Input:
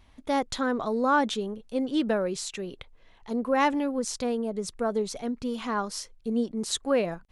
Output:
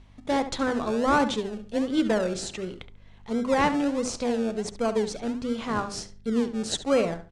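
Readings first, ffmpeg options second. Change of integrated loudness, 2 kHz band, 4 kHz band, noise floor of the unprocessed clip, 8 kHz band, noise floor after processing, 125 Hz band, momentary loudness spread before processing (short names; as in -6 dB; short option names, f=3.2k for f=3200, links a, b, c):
+1.5 dB, +1.0 dB, +1.0 dB, -56 dBFS, 0.0 dB, -50 dBFS, +4.5 dB, 9 LU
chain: -filter_complex "[0:a]bandreject=f=50:t=h:w=6,bandreject=f=100:t=h:w=6,bandreject=f=150:t=h:w=6,bandreject=f=200:t=h:w=6,bandreject=f=250:t=h:w=6,bandreject=f=300:t=h:w=6,bandreject=f=350:t=h:w=6,bandreject=f=400:t=h:w=6,aeval=exprs='val(0)+0.00178*(sin(2*PI*50*n/s)+sin(2*PI*2*50*n/s)/2+sin(2*PI*3*50*n/s)/3+sin(2*PI*4*50*n/s)/4+sin(2*PI*5*50*n/s)/5)':c=same,asplit=2[a][b];[b]acrusher=samples=34:mix=1:aa=0.000001:lfo=1:lforange=20.4:lforate=1.4,volume=-8dB[c];[a][c]amix=inputs=2:normalize=0,lowpass=f=9k:w=0.5412,lowpass=f=9k:w=1.3066,asplit=2[d][e];[e]adelay=70,lowpass=f=3.6k:p=1,volume=-11dB,asplit=2[f][g];[g]adelay=70,lowpass=f=3.6k:p=1,volume=0.25,asplit=2[h][i];[i]adelay=70,lowpass=f=3.6k:p=1,volume=0.25[j];[d][f][h][j]amix=inputs=4:normalize=0"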